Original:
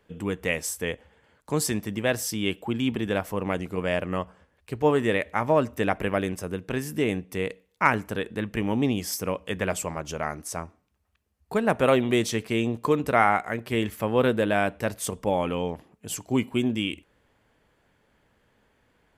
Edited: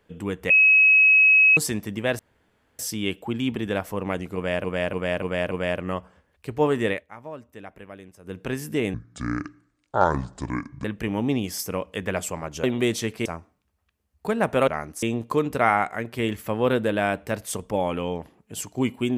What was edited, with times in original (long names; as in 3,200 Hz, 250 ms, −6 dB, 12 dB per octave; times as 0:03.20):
0:00.50–0:01.57: beep over 2,560 Hz −12 dBFS
0:02.19: splice in room tone 0.60 s
0:03.75–0:04.04: repeat, 5 plays
0:05.14–0:06.61: duck −16.5 dB, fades 0.14 s
0:07.18–0:08.38: play speed 63%
0:10.17–0:10.52: swap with 0:11.94–0:12.56